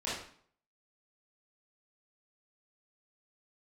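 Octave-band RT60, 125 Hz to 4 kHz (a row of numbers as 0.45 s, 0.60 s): 0.60 s, 0.60 s, 0.55 s, 0.55 s, 0.50 s, 0.45 s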